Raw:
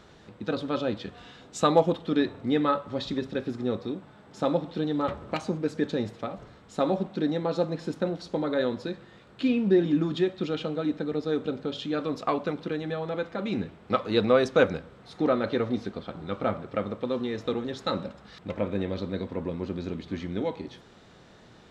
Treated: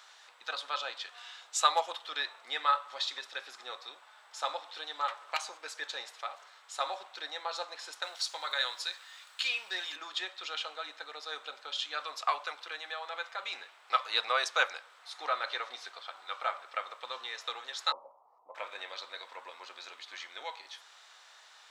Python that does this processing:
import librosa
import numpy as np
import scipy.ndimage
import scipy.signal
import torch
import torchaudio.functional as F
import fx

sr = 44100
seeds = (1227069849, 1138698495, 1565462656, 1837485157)

y = fx.tilt_eq(x, sr, slope=3.0, at=(8.02, 9.96))
y = fx.ellip_lowpass(y, sr, hz=1000.0, order=4, stop_db=40, at=(17.92, 18.55))
y = scipy.signal.sosfilt(scipy.signal.butter(4, 850.0, 'highpass', fs=sr, output='sos'), y)
y = fx.high_shelf(y, sr, hz=4100.0, db=8.5)